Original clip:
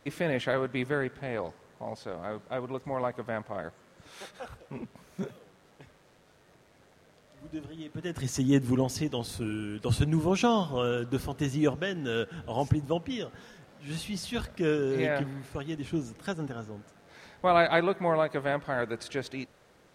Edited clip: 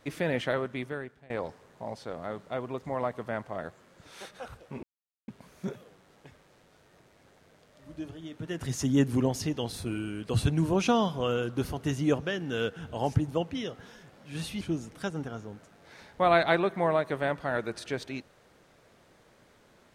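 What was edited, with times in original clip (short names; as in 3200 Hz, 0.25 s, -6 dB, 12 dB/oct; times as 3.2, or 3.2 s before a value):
0.44–1.3 fade out, to -22.5 dB
4.83 insert silence 0.45 s
14.16–15.85 cut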